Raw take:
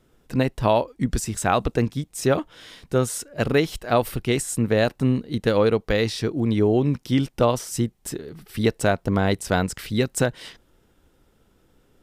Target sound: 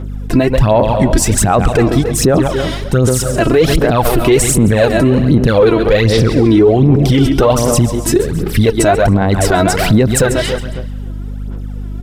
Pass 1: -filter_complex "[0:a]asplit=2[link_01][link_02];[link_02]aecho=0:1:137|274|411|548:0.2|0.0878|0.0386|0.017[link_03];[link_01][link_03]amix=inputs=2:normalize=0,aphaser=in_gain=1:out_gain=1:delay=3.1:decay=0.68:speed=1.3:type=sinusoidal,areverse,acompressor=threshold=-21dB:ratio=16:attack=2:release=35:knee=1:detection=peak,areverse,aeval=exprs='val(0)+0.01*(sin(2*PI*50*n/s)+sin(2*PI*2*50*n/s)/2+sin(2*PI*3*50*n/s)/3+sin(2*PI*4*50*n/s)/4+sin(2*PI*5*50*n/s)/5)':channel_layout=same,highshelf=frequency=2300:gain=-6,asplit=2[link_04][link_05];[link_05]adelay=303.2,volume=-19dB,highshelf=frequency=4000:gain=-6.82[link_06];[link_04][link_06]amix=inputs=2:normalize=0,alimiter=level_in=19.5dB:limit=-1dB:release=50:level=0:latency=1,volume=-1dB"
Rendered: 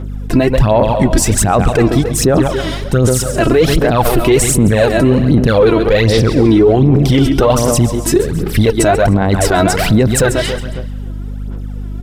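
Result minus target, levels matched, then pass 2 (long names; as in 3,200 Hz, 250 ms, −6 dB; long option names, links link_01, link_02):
downward compressor: peak gain reduction +7 dB
-filter_complex "[0:a]asplit=2[link_01][link_02];[link_02]aecho=0:1:137|274|411|548:0.2|0.0878|0.0386|0.017[link_03];[link_01][link_03]amix=inputs=2:normalize=0,aphaser=in_gain=1:out_gain=1:delay=3.1:decay=0.68:speed=1.3:type=sinusoidal,areverse,acompressor=threshold=-13.5dB:ratio=16:attack=2:release=35:knee=1:detection=peak,areverse,aeval=exprs='val(0)+0.01*(sin(2*PI*50*n/s)+sin(2*PI*2*50*n/s)/2+sin(2*PI*3*50*n/s)/3+sin(2*PI*4*50*n/s)/4+sin(2*PI*5*50*n/s)/5)':channel_layout=same,highshelf=frequency=2300:gain=-6,asplit=2[link_04][link_05];[link_05]adelay=303.2,volume=-19dB,highshelf=frequency=4000:gain=-6.82[link_06];[link_04][link_06]amix=inputs=2:normalize=0,alimiter=level_in=19.5dB:limit=-1dB:release=50:level=0:latency=1,volume=-1dB"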